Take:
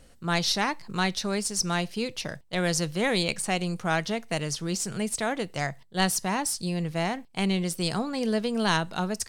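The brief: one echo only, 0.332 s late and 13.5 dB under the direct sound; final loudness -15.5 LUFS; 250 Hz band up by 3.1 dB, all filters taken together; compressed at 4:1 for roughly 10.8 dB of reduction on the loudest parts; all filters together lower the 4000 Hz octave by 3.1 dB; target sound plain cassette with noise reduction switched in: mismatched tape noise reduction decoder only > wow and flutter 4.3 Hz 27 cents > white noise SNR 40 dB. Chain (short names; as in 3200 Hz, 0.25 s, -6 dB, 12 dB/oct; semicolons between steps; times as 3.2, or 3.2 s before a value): bell 250 Hz +4.5 dB; bell 4000 Hz -4 dB; compressor 4:1, threshold -33 dBFS; echo 0.332 s -13.5 dB; mismatched tape noise reduction decoder only; wow and flutter 4.3 Hz 27 cents; white noise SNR 40 dB; gain +20 dB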